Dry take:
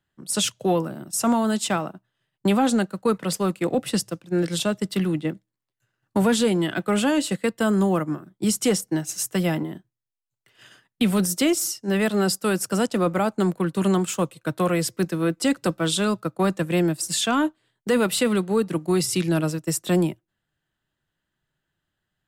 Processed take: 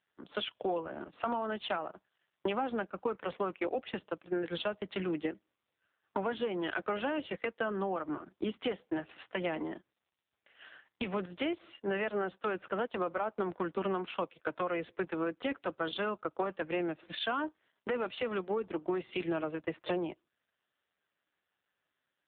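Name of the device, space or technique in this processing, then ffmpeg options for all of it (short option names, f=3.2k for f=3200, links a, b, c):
voicemail: -af "highpass=420,lowpass=3k,acompressor=threshold=-33dB:ratio=8,volume=3.5dB" -ar 8000 -c:a libopencore_amrnb -b:a 5900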